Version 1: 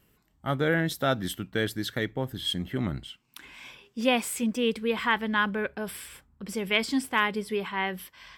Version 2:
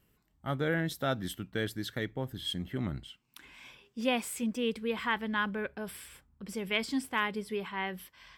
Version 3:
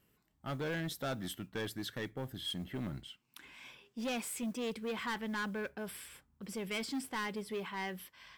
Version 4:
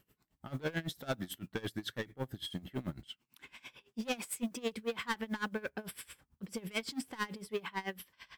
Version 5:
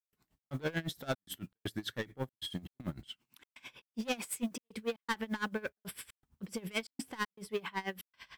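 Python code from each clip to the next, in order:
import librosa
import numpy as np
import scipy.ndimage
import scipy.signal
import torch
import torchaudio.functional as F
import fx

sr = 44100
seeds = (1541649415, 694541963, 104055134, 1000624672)

y1 = fx.low_shelf(x, sr, hz=170.0, db=3.0)
y1 = y1 * librosa.db_to_amplitude(-6.0)
y2 = fx.low_shelf(y1, sr, hz=62.0, db=-11.5)
y2 = 10.0 ** (-31.5 / 20.0) * np.tanh(y2 / 10.0 ** (-31.5 / 20.0))
y2 = fx.mod_noise(y2, sr, seeds[0], snr_db=31)
y2 = y2 * librosa.db_to_amplitude(-1.0)
y3 = y2 * 10.0 ** (-22 * (0.5 - 0.5 * np.cos(2.0 * np.pi * 9.0 * np.arange(len(y2)) / sr)) / 20.0)
y3 = y3 * librosa.db_to_amplitude(5.5)
y4 = fx.step_gate(y3, sr, bpm=118, pattern='.xx.xxxxx', floor_db=-60.0, edge_ms=4.5)
y4 = y4 * librosa.db_to_amplitude(1.0)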